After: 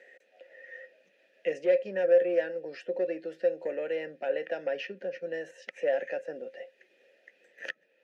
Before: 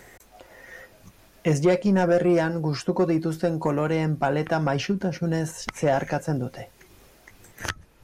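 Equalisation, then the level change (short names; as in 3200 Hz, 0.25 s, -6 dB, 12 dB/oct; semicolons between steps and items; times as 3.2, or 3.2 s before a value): vowel filter e; steep high-pass 180 Hz 36 dB/oct; bell 2900 Hz +5.5 dB 2.8 oct; 0.0 dB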